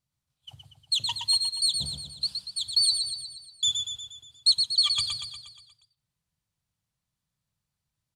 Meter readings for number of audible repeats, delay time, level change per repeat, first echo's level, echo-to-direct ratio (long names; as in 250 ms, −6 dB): 6, 119 ms, −5.0 dB, −5.5 dB, −4.0 dB